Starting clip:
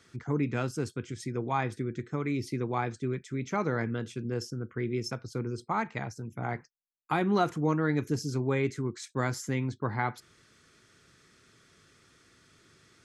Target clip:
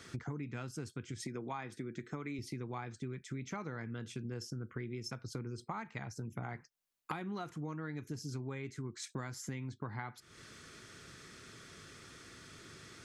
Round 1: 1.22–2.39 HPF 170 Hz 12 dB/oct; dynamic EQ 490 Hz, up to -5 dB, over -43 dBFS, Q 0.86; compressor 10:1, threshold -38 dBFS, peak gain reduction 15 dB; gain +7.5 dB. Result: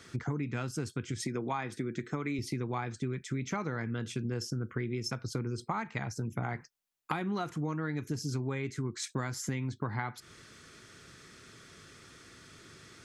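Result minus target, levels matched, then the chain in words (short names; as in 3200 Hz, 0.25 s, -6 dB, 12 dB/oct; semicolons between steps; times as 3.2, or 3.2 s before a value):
compressor: peak gain reduction -7 dB
1.22–2.39 HPF 170 Hz 12 dB/oct; dynamic EQ 490 Hz, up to -5 dB, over -43 dBFS, Q 0.86; compressor 10:1, threshold -46 dBFS, peak gain reduction 22 dB; gain +7.5 dB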